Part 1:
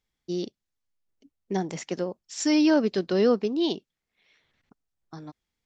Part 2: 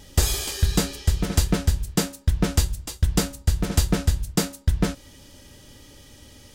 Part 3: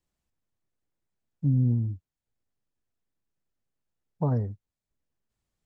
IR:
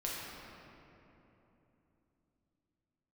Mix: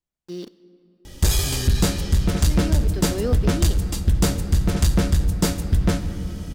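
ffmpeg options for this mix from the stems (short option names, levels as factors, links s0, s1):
-filter_complex "[0:a]aeval=exprs='val(0)*gte(abs(val(0)),0.00944)':c=same,volume=0.596,asplit=2[s0][s1];[s1]volume=0.141[s2];[1:a]lowshelf=f=230:g=4.5,adelay=1050,volume=1.19,asplit=2[s3][s4];[s4]volume=0.266[s5];[2:a]volume=0.422,asplit=2[s6][s7];[s7]apad=whole_len=249490[s8];[s0][s8]sidechaincompress=threshold=0.00316:ratio=8:attack=16:release=966[s9];[3:a]atrim=start_sample=2205[s10];[s2][s5]amix=inputs=2:normalize=0[s11];[s11][s10]afir=irnorm=-1:irlink=0[s12];[s9][s3][s6][s12]amix=inputs=4:normalize=0,asoftclip=type=tanh:threshold=0.282"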